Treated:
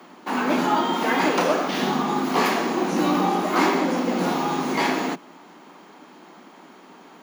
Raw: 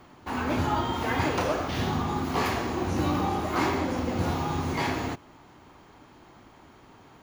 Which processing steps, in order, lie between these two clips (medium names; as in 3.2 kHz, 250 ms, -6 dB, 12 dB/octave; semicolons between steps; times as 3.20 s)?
steep high-pass 170 Hz 72 dB/octave; trim +6.5 dB